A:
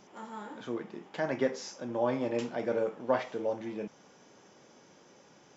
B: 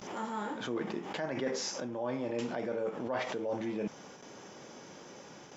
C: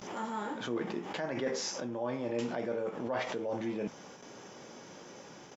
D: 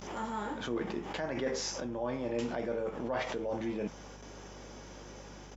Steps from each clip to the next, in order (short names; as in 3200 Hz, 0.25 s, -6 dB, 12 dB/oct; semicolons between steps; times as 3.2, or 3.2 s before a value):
reverse; compressor 12:1, threshold -40 dBFS, peak gain reduction 18.5 dB; reverse; gate with hold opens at -49 dBFS; backwards sustainer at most 51 dB/s; gain +8 dB
doubler 17 ms -14 dB
hum 50 Hz, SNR 16 dB